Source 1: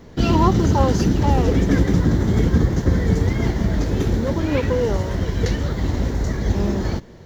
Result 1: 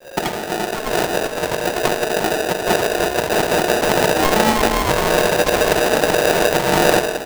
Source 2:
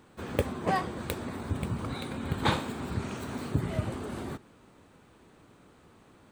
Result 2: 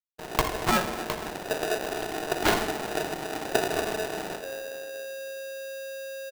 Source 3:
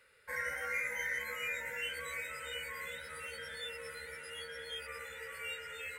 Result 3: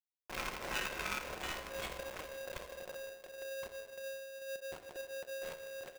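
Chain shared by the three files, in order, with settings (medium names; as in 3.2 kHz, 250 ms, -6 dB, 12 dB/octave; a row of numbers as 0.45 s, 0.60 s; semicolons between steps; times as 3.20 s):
treble shelf 10 kHz -12 dB; compressor with a negative ratio -21 dBFS, ratio -0.5; hysteresis with a dead band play -30 dBFS; on a send: delay 504 ms -23 dB; on the sum: simulated room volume 1800 m³, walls mixed, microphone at 0.99 m; polarity switched at an audio rate 540 Hz; trim +3 dB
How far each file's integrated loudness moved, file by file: +2.5 LU, +3.0 LU, -3.0 LU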